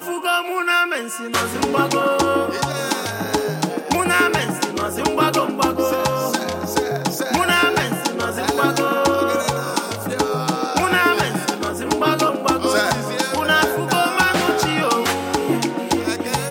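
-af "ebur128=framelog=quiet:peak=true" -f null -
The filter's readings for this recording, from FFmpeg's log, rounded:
Integrated loudness:
  I:         -19.2 LUFS
  Threshold: -29.2 LUFS
Loudness range:
  LRA:         1.7 LU
  Threshold: -39.1 LUFS
  LRA low:   -19.9 LUFS
  LRA high:  -18.1 LUFS
True peak:
  Peak:       -2.5 dBFS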